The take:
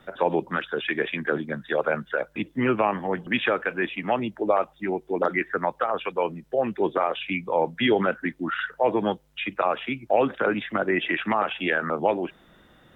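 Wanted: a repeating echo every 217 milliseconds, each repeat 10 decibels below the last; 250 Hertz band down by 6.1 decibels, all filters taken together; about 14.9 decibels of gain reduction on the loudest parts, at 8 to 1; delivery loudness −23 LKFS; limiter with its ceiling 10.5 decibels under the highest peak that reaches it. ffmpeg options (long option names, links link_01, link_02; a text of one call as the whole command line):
ffmpeg -i in.wav -af "equalizer=frequency=250:width_type=o:gain=-8.5,acompressor=threshold=-33dB:ratio=8,alimiter=level_in=5dB:limit=-24dB:level=0:latency=1,volume=-5dB,aecho=1:1:217|434|651|868:0.316|0.101|0.0324|0.0104,volume=17dB" out.wav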